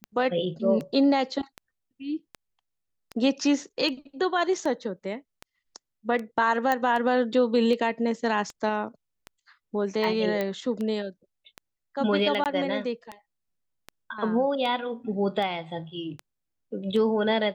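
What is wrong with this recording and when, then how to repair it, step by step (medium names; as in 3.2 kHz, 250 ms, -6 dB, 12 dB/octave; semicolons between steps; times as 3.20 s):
tick 78 rpm -21 dBFS
6.72 s: pop -12 dBFS
10.41 s: pop -15 dBFS
12.44–12.46 s: dropout 18 ms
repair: de-click; interpolate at 12.44 s, 18 ms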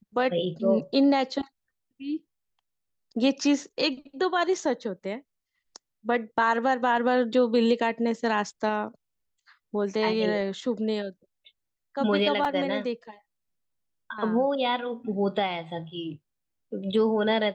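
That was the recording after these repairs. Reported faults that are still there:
nothing left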